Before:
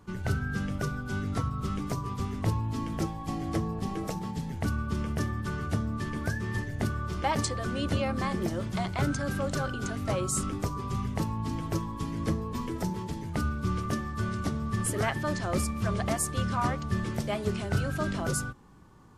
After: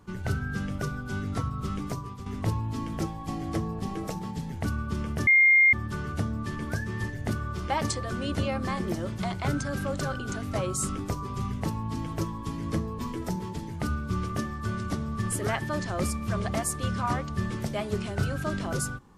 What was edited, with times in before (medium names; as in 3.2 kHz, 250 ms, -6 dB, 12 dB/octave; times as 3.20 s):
1.86–2.26 s: fade out, to -10.5 dB
5.27 s: add tone 2.12 kHz -15 dBFS 0.46 s